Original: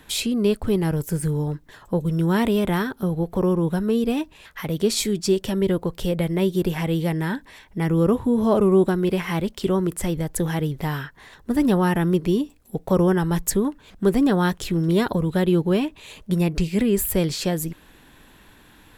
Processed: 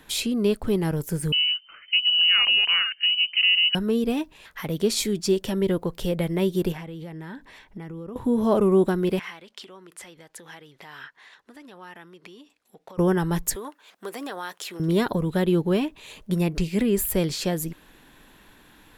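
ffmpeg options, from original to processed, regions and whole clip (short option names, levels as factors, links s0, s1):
-filter_complex "[0:a]asettb=1/sr,asplit=3[s0][s1][s2];[s0]atrim=end=1.324[s3];[s1]atrim=start=1.32:end=3.75,asetpts=PTS-STARTPTS,afade=t=in:d=0.004:c=qsin,afade=t=out:st=2.426:d=0.004:c=qsin,equalizer=f=94:w=0.82:g=6.5,lowpass=f=2600:t=q:w=0.5098,lowpass=f=2600:t=q:w=0.6013,lowpass=f=2600:t=q:w=0.9,lowpass=f=2600:t=q:w=2.563,afreqshift=-3100[s4];[s2]atrim=start=3.746[s5];[s3][s4]acrossfade=d=0.004:c1=hsin:c2=qsin[s6];[s6][s5]acrossfade=d=0.004:c1=qsin:c2=hsin,asettb=1/sr,asplit=3[s7][s8][s9];[s7]atrim=end=6.724[s10];[s8]atrim=start=6.72:end=8.16,asetpts=PTS-STARTPTS,afade=t=in:d=0.004:c=qsin,afade=t=out:st=1.436:d=0.004:c=qsin,highshelf=f=7100:g=-9,acompressor=threshold=0.0316:ratio=16:attack=3.2:release=140:knee=1:detection=peak[s11];[s9]atrim=start=8.156[s12];[s10][s11]acrossfade=d=0.004:c1=hsin:c2=qsin[s13];[s13][s12]acrossfade=d=0.004:c1=qsin:c2=hsin,asettb=1/sr,asplit=3[s14][s15][s16];[s14]atrim=end=9.194[s17];[s15]atrim=start=9.19:end=12.98,asetpts=PTS-STARTPTS,afade=t=in:d=0.004:c=qsin,afade=t=out:st=3.786:d=0.004:c=qsin,highshelf=f=5300:g=-4.5,acompressor=threshold=0.0447:ratio=10:attack=3.2:release=140:knee=1:detection=peak,bandpass=f=3000:t=q:w=0.5[s18];[s16]atrim=start=12.976[s19];[s17][s18]acrossfade=d=0.004:c1=hsin:c2=qsin[s20];[s20][s19]acrossfade=d=0.004:c1=qsin:c2=hsin,asettb=1/sr,asplit=3[s21][s22][s23];[s21]atrim=end=13.554[s24];[s22]atrim=start=13.55:end=14.8,asetpts=PTS-STARTPTS,afade=t=in:d=0.004:c=qsin,afade=t=out:st=1.246:d=0.004:c=qsin,highpass=660,acompressor=threshold=0.0398:ratio=3:attack=3.2:release=140:knee=1:detection=peak[s25];[s23]atrim=start=14.796[s26];[s24][s25]acrossfade=d=0.004:c1=hsin:c2=qsin[s27];[s27][s26]acrossfade=d=0.004:c1=qsin:c2=hsin,equalizer=f=73:t=o:w=1.5:g=-5.5,bandreject=f=8000:w=26,volume=0.841"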